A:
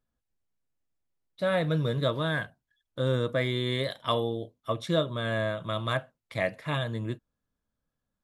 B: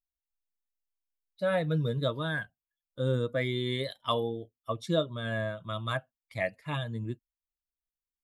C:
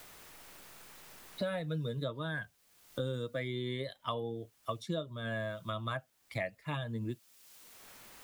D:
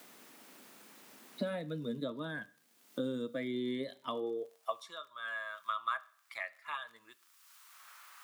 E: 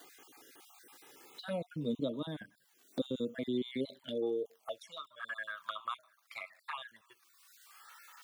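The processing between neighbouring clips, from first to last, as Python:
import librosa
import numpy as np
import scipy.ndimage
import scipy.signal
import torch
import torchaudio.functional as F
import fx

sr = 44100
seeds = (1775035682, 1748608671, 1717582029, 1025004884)

y1 = fx.bin_expand(x, sr, power=1.5)
y2 = fx.quant_dither(y1, sr, seeds[0], bits=12, dither='triangular')
y2 = fx.band_squash(y2, sr, depth_pct=100)
y2 = F.gain(torch.from_numpy(y2), -6.5).numpy()
y3 = fx.rev_schroeder(y2, sr, rt60_s=0.54, comb_ms=27, drr_db=18.5)
y3 = fx.dmg_crackle(y3, sr, seeds[1], per_s=34.0, level_db=-47.0)
y3 = fx.filter_sweep_highpass(y3, sr, from_hz=240.0, to_hz=1200.0, start_s=4.06, end_s=4.96, q=3.2)
y3 = F.gain(torch.from_numpy(y3), -3.5).numpy()
y4 = fx.spec_dropout(y3, sr, seeds[2], share_pct=32)
y4 = fx.env_flanger(y4, sr, rest_ms=3.2, full_db=-37.0)
y4 = F.gain(torch.from_numpy(y4), 4.0).numpy()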